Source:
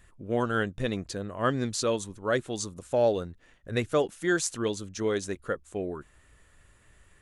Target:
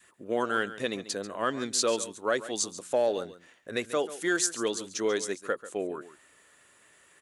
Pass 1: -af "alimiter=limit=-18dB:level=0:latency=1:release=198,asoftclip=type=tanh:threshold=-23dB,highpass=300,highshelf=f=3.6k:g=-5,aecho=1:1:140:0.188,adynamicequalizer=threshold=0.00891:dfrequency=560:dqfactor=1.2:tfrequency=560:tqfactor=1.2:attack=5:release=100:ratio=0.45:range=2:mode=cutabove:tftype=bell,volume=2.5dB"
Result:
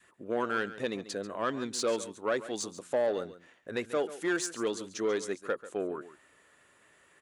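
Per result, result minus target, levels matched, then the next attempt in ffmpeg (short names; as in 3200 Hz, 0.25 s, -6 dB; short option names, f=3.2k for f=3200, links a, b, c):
soft clip: distortion +16 dB; 8000 Hz band -5.0 dB
-af "alimiter=limit=-18dB:level=0:latency=1:release=198,asoftclip=type=tanh:threshold=-13dB,highpass=300,highshelf=f=3.6k:g=-5,aecho=1:1:140:0.188,adynamicequalizer=threshold=0.00891:dfrequency=560:dqfactor=1.2:tfrequency=560:tqfactor=1.2:attack=5:release=100:ratio=0.45:range=2:mode=cutabove:tftype=bell,volume=2.5dB"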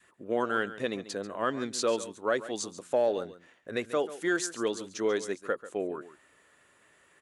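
8000 Hz band -6.0 dB
-af "alimiter=limit=-18dB:level=0:latency=1:release=198,asoftclip=type=tanh:threshold=-13dB,highpass=300,highshelf=f=3.6k:g=4,aecho=1:1:140:0.188,adynamicequalizer=threshold=0.00891:dfrequency=560:dqfactor=1.2:tfrequency=560:tqfactor=1.2:attack=5:release=100:ratio=0.45:range=2:mode=cutabove:tftype=bell,volume=2.5dB"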